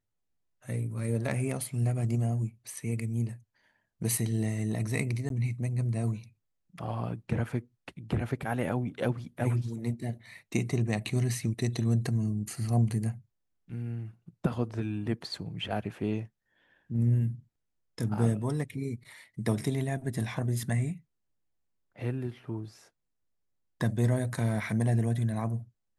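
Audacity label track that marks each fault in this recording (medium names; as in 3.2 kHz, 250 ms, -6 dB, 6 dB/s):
5.290000	5.300000	dropout 12 ms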